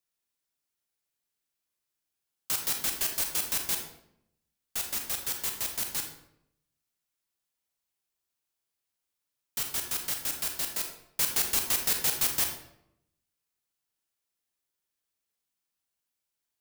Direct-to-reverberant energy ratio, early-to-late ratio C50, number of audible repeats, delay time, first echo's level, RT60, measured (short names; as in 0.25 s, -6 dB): 3.5 dB, 6.0 dB, none, none, none, 0.75 s